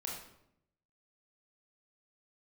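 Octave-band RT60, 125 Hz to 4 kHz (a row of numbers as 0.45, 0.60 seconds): 1.1, 0.95, 0.80, 0.70, 0.60, 0.55 seconds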